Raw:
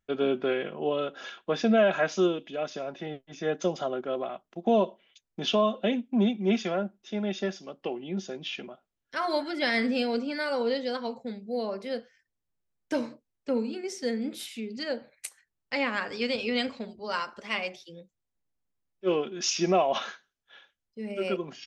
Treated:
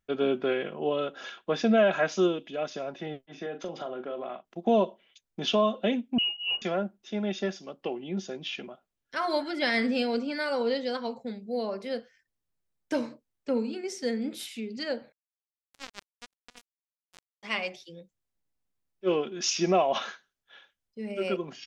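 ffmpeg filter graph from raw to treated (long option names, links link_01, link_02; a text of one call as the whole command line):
ffmpeg -i in.wav -filter_complex "[0:a]asettb=1/sr,asplit=3[link_01][link_02][link_03];[link_01]atrim=end=3.264[link_04];[link_02]atrim=start=3.26:end=4.45,asetpts=PTS-STARTPTS,afade=type=in:duration=0.004:curve=qsin,afade=type=out:start_time=1.186:duration=0.004:curve=qsin,highpass=170,lowpass=3900,acompressor=threshold=-32dB:ratio=4:attack=3.2:release=140:knee=1:detection=peak,asplit=2[link_05][link_06];[link_06]adelay=40,volume=-9.5dB[link_07];[link_05][link_07]amix=inputs=2:normalize=0,atrim=end_sample=52479[link_08];[link_03]atrim=start=4.446[link_09];[link_04][link_08]acrossfade=duration=0.004:curve1=hsin:curve2=qsin[link_10];[link_10][link_09]acrossfade=duration=0.004:curve1=qsin:curve2=hsin,asettb=1/sr,asplit=3[link_11][link_12][link_13];[link_11]atrim=end=6.184[link_14];[link_12]atrim=start=6.18:end=6.62,asetpts=PTS-STARTPTS,afade=type=in:duration=0.004:curve=qsin,afade=type=out:start_time=0.436:duration=0.004:curve=qsin,equalizer=frequency=1100:width=0.31:gain=-14,lowpass=frequency=2600:width_type=q:width=0.5098,lowpass=frequency=2600:width_type=q:width=0.6013,lowpass=frequency=2600:width_type=q:width=0.9,lowpass=frequency=2600:width_type=q:width=2.563,afreqshift=-3100[link_15];[link_13]atrim=start=6.616[link_16];[link_14][link_15]acrossfade=duration=0.004:curve1=hsin:curve2=qsin[link_17];[link_17][link_16]acrossfade=duration=0.004:curve1=qsin:curve2=hsin,asettb=1/sr,asplit=3[link_18][link_19][link_20];[link_18]atrim=end=15.124[link_21];[link_19]atrim=start=15.12:end=17.43,asetpts=PTS-STARTPTS,afade=type=in:duration=0.004:curve=qsin,afade=type=out:start_time=2.306:duration=0.004:curve=qsin,highpass=53,acrossover=split=2600[link_22][link_23];[link_23]acompressor=threshold=-49dB:ratio=4:attack=1:release=60[link_24];[link_22][link_24]amix=inputs=2:normalize=0,acrusher=bits=2:mix=0:aa=0.5[link_25];[link_20]atrim=start=17.426[link_26];[link_21][link_25]acrossfade=duration=0.004:curve1=hsin:curve2=qsin[link_27];[link_27][link_26]acrossfade=duration=0.004:curve1=qsin:curve2=hsin" out.wav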